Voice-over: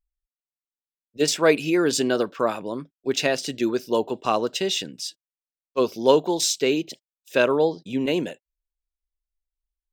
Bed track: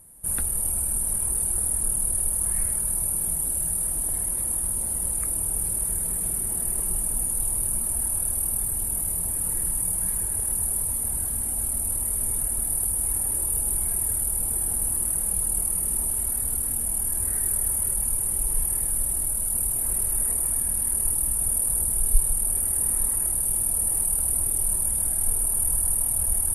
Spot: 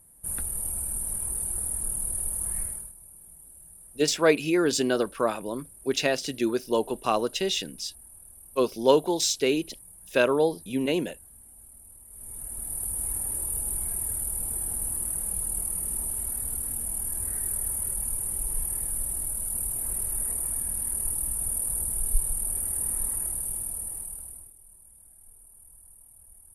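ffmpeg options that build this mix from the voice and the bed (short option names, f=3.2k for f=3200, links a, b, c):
-filter_complex "[0:a]adelay=2800,volume=-2.5dB[a];[1:a]volume=13dB,afade=t=out:st=2.59:d=0.34:silence=0.125893,afade=t=in:st=12.08:d=0.93:silence=0.11885,afade=t=out:st=23.16:d=1.38:silence=0.0630957[b];[a][b]amix=inputs=2:normalize=0"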